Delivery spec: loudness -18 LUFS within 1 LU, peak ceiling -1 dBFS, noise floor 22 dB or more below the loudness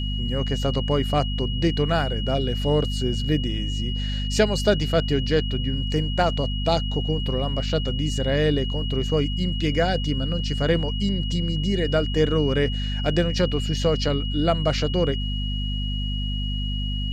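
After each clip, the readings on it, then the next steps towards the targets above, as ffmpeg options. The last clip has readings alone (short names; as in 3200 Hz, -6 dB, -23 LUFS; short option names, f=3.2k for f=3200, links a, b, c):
hum 50 Hz; harmonics up to 250 Hz; hum level -24 dBFS; steady tone 2900 Hz; tone level -32 dBFS; loudness -24.0 LUFS; peak -5.5 dBFS; loudness target -18.0 LUFS
-> -af "bandreject=f=50:t=h:w=4,bandreject=f=100:t=h:w=4,bandreject=f=150:t=h:w=4,bandreject=f=200:t=h:w=4,bandreject=f=250:t=h:w=4"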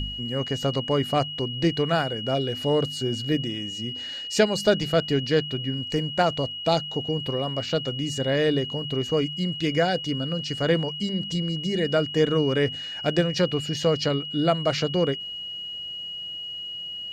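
hum none; steady tone 2900 Hz; tone level -32 dBFS
-> -af "bandreject=f=2.9k:w=30"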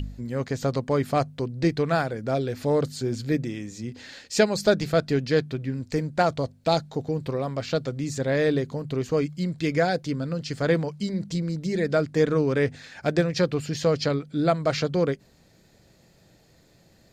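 steady tone none; loudness -26.0 LUFS; peak -7.0 dBFS; loudness target -18.0 LUFS
-> -af "volume=8dB,alimiter=limit=-1dB:level=0:latency=1"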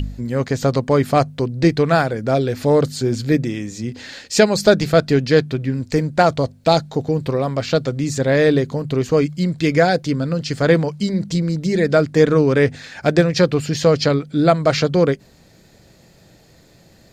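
loudness -18.0 LUFS; peak -1.0 dBFS; noise floor -50 dBFS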